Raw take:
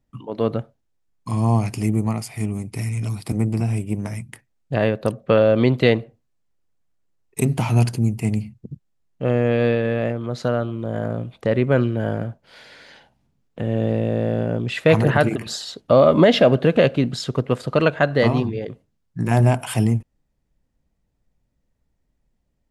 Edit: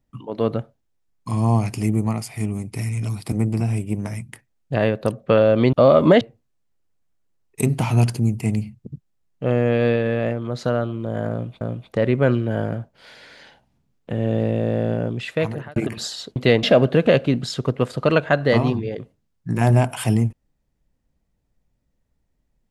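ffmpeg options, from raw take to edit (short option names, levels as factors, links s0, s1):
-filter_complex "[0:a]asplit=7[s0][s1][s2][s3][s4][s5][s6];[s0]atrim=end=5.732[s7];[s1]atrim=start=15.848:end=16.332[s8];[s2]atrim=start=5.998:end=11.402[s9];[s3]atrim=start=11.098:end=15.25,asetpts=PTS-STARTPTS,afade=t=out:st=3.352:d=0.8[s10];[s4]atrim=start=15.25:end=15.852,asetpts=PTS-STARTPTS,afade=t=in:d=0.004:c=hsin[s11];[s5]atrim=start=5.728:end=6.002[s12];[s6]atrim=start=16.328[s13];[s7][s8]acrossfade=d=0.004:c1=hsin:c2=hsin[s14];[s14][s9]acrossfade=d=0.004:c1=hsin:c2=hsin[s15];[s10][s11]concat=n=2:v=0:a=1[s16];[s15][s16]acrossfade=d=0.004:c1=hsin:c2=hsin[s17];[s17][s12]acrossfade=d=0.004:c1=hsin:c2=hsin[s18];[s18][s13]acrossfade=d=0.004:c1=hsin:c2=hsin"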